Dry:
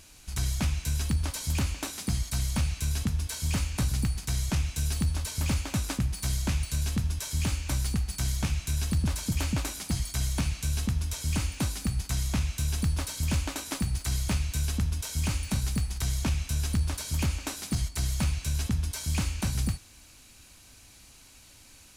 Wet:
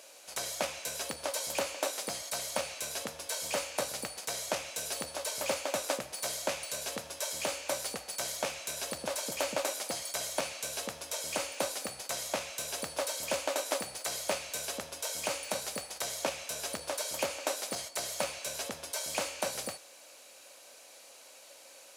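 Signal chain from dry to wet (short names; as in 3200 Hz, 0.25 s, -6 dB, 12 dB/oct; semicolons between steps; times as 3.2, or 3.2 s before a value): resonant high-pass 550 Hz, resonance Q 5.7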